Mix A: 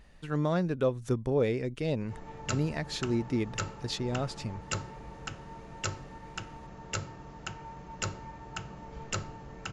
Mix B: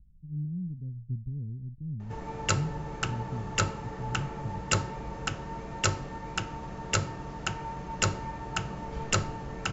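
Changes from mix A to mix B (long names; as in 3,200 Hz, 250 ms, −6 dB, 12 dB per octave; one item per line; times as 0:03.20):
speech: add inverse Chebyshev low-pass filter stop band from 770 Hz, stop band 70 dB
background +7.5 dB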